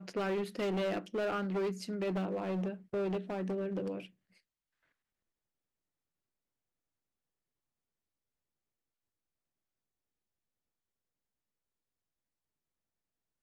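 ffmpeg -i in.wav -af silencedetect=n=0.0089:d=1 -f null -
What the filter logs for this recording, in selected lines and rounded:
silence_start: 4.05
silence_end: 13.42 | silence_duration: 9.37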